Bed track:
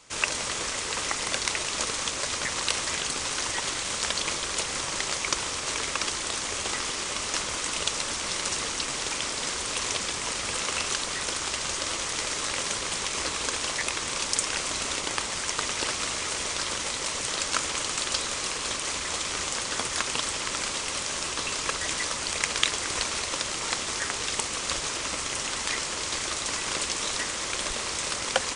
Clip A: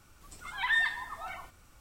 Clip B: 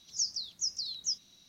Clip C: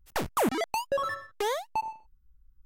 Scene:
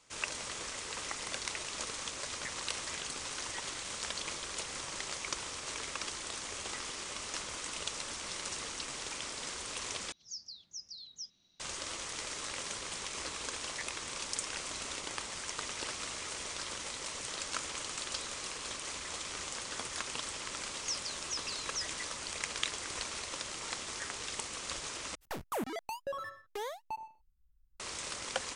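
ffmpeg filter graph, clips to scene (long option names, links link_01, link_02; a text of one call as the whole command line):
ffmpeg -i bed.wav -i cue0.wav -i cue1.wav -i cue2.wav -filter_complex "[2:a]asplit=2[link_01][link_02];[0:a]volume=-10.5dB[link_03];[link_01]lowpass=5400[link_04];[link_03]asplit=3[link_05][link_06][link_07];[link_05]atrim=end=10.124[link_08];[link_04]atrim=end=1.48,asetpts=PTS-STARTPTS,volume=-9dB[link_09];[link_06]atrim=start=11.596:end=25.154[link_10];[3:a]atrim=end=2.65,asetpts=PTS-STARTPTS,volume=-10dB[link_11];[link_07]atrim=start=27.796[link_12];[link_02]atrim=end=1.48,asetpts=PTS-STARTPTS,volume=-6dB,afade=type=in:duration=0.004:curve=hsin,afade=type=out:start_time=1.476:duration=0.004:curve=hsin,adelay=20690[link_13];[link_08][link_09]acrossfade=duration=0.004:curve1=hsin:curve2=hsin[link_14];[link_14][link_10]acrossfade=duration=0.004:curve1=hsin:curve2=hsin[link_15];[link_15][link_11]acrossfade=duration=0.004:curve1=hsin:curve2=hsin[link_16];[link_16][link_12]acrossfade=duration=0.004:curve1=hsin:curve2=hsin[link_17];[link_17][link_13]amix=inputs=2:normalize=0" out.wav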